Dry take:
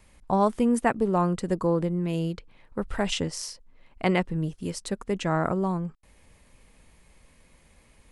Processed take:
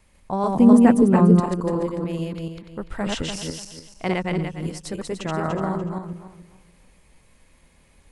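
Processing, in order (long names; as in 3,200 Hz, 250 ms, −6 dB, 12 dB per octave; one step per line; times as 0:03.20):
feedback delay that plays each chunk backwards 146 ms, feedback 49%, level −1 dB
0:00.55–0:01.40: parametric band 200 Hz +12.5 dB 1.8 octaves
level −2 dB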